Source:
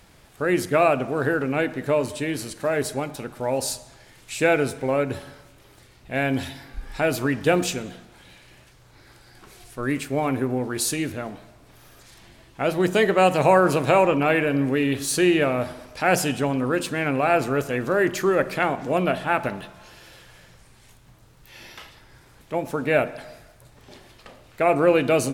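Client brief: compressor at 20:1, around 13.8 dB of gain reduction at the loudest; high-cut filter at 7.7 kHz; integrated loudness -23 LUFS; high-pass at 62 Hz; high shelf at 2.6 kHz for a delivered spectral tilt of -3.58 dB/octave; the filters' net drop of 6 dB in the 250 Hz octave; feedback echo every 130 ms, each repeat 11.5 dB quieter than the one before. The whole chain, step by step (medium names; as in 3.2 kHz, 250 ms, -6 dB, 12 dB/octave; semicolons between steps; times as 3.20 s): high-pass 62 Hz; low-pass 7.7 kHz; peaking EQ 250 Hz -9 dB; treble shelf 2.6 kHz +5 dB; compression 20:1, threshold -27 dBFS; feedback delay 130 ms, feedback 27%, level -11.5 dB; trim +9.5 dB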